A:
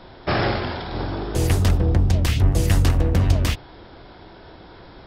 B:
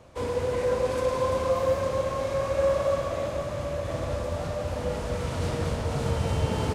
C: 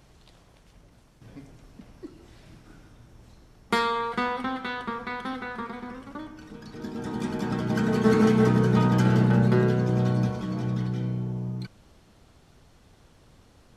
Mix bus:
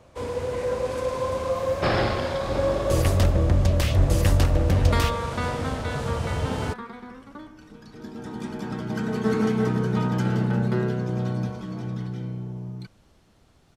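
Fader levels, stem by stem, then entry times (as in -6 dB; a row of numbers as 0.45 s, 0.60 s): -2.5 dB, -1.0 dB, -3.0 dB; 1.55 s, 0.00 s, 1.20 s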